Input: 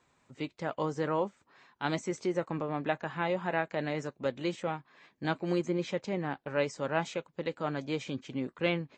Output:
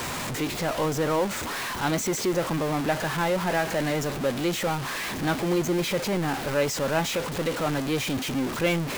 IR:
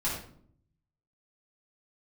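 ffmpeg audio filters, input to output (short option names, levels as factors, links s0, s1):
-af "aeval=exprs='val(0)+0.5*0.0398*sgn(val(0))':c=same,volume=1.33"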